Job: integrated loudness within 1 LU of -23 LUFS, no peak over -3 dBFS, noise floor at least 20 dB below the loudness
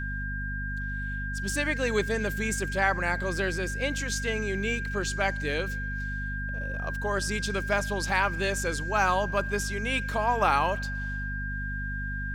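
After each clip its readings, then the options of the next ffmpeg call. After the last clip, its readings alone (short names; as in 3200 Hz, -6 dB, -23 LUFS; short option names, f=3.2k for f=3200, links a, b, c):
hum 50 Hz; harmonics up to 250 Hz; hum level -32 dBFS; steady tone 1600 Hz; tone level -34 dBFS; loudness -28.5 LUFS; peak -10.0 dBFS; loudness target -23.0 LUFS
-> -af "bandreject=f=50:t=h:w=6,bandreject=f=100:t=h:w=6,bandreject=f=150:t=h:w=6,bandreject=f=200:t=h:w=6,bandreject=f=250:t=h:w=6"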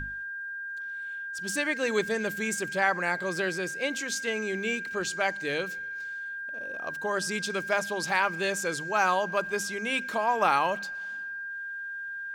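hum none; steady tone 1600 Hz; tone level -34 dBFS
-> -af "bandreject=f=1.6k:w=30"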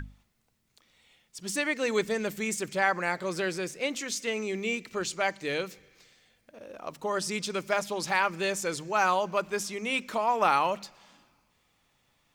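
steady tone none; loudness -29.5 LUFS; peak -11.0 dBFS; loudness target -23.0 LUFS
-> -af "volume=6.5dB"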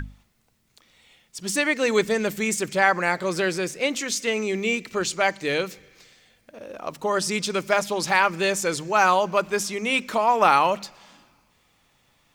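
loudness -23.0 LUFS; peak -4.5 dBFS; noise floor -65 dBFS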